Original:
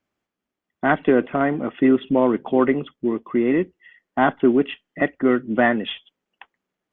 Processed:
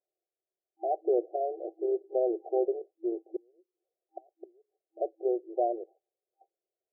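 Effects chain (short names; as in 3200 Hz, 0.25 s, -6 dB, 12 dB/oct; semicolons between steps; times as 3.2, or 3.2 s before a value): 3.36–4.85 flipped gate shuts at -15 dBFS, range -35 dB; FFT band-pass 330–790 Hz; gain -7.5 dB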